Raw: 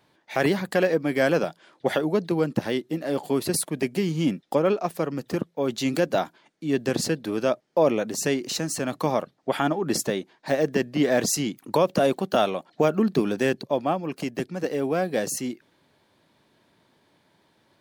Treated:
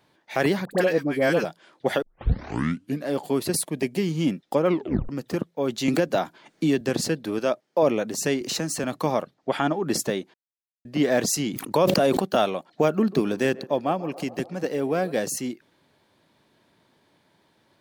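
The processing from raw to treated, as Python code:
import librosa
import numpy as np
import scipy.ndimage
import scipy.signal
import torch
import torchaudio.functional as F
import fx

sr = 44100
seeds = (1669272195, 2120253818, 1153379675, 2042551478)

y = fx.dispersion(x, sr, late='highs', ms=60.0, hz=1000.0, at=(0.65, 1.45))
y = fx.peak_eq(y, sr, hz=1400.0, db=-7.0, octaves=0.32, at=(3.57, 3.99))
y = fx.band_squash(y, sr, depth_pct=100, at=(5.88, 6.81))
y = fx.highpass(y, sr, hz=210.0, slope=6, at=(7.39, 7.83))
y = fx.band_squash(y, sr, depth_pct=40, at=(8.41, 8.84))
y = fx.lowpass(y, sr, hz=8200.0, slope=12, at=(9.34, 9.75))
y = fx.sustainer(y, sr, db_per_s=38.0, at=(11.49, 12.25))
y = fx.echo_banded(y, sr, ms=140, feedback_pct=75, hz=620.0, wet_db=-17.0, at=(12.88, 15.12))
y = fx.edit(y, sr, fx.tape_start(start_s=2.02, length_s=1.05),
    fx.tape_stop(start_s=4.66, length_s=0.43),
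    fx.silence(start_s=10.34, length_s=0.51), tone=tone)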